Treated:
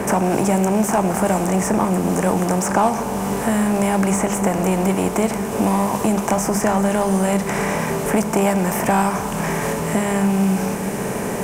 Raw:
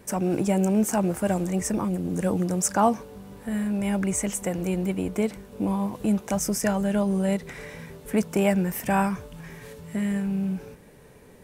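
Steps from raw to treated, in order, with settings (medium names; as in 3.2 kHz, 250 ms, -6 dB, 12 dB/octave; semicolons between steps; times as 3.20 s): spectral levelling over time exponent 0.6; dynamic bell 900 Hz, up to +5 dB, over -37 dBFS, Q 1.2; in parallel at -4 dB: saturation -22.5 dBFS, distortion -7 dB; on the sum: reverberation RT60 1.5 s, pre-delay 4 ms, DRR 10 dB; three bands compressed up and down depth 70%; trim -1 dB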